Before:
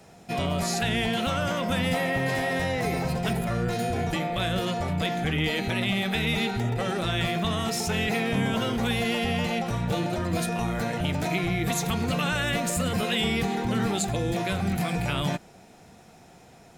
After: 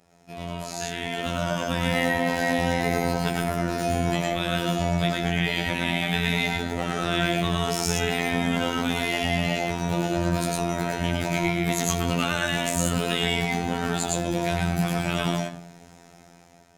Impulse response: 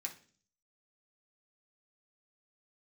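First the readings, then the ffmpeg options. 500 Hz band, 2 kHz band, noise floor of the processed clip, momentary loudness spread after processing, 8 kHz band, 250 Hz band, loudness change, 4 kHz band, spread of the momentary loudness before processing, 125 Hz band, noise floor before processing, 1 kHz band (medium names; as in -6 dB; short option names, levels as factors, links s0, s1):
+1.5 dB, +2.0 dB, -51 dBFS, 4 LU, +3.5 dB, +1.0 dB, +1.5 dB, +1.5 dB, 3 LU, +0.5 dB, -52 dBFS, +2.0 dB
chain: -filter_complex "[0:a]asplit=2[s0][s1];[1:a]atrim=start_sample=2205,asetrate=36603,aresample=44100,adelay=108[s2];[s1][s2]afir=irnorm=-1:irlink=0,volume=1.12[s3];[s0][s3]amix=inputs=2:normalize=0,dynaudnorm=f=520:g=5:m=4.47,afftfilt=real='hypot(re,im)*cos(PI*b)':imag='0':win_size=2048:overlap=0.75,volume=0.447"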